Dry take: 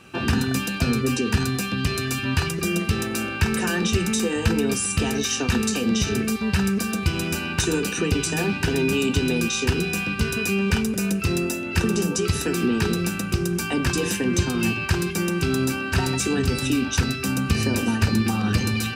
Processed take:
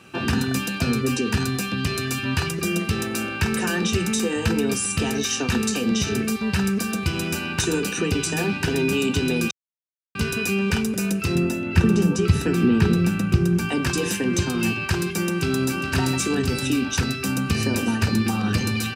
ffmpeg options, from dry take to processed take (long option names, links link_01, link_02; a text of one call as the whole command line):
ffmpeg -i in.wav -filter_complex "[0:a]asettb=1/sr,asplit=3[link_01][link_02][link_03];[link_01]atrim=end=11.354[link_04];[link_02]atrim=start=11.35:end=13.69,asetpts=PTS-STARTPTS,afade=type=in:duration=0.004:curve=qsin,afade=type=out:start_time=2.336:duration=0.004:curve=qsin,bass=frequency=250:gain=8,treble=frequency=4000:gain=-7[link_05];[link_03]atrim=start=13.686[link_06];[link_04][link_05]acrossfade=duration=0.004:curve1=hsin:curve2=qsin[link_07];[link_07][link_06]acrossfade=duration=0.004:curve1=qsin:curve2=hsin,asplit=2[link_08][link_09];[link_09]afade=type=in:start_time=15.33:duration=0.01,afade=type=out:start_time=15.93:duration=0.01,aecho=0:1:410|820|1230|1640:0.398107|0.119432|0.0358296|0.0107489[link_10];[link_08][link_10]amix=inputs=2:normalize=0,asplit=3[link_11][link_12][link_13];[link_11]atrim=end=9.51,asetpts=PTS-STARTPTS,afade=type=out:start_time=9.506:duration=0.004:curve=hsin[link_14];[link_12]atrim=start=9.51:end=10.15,asetpts=PTS-STARTPTS,volume=0[link_15];[link_13]atrim=start=10.15,asetpts=PTS-STARTPTS,afade=type=in:duration=0.004:curve=hsin[link_16];[link_14][link_15][link_16]concat=n=3:v=0:a=1,highpass=78" out.wav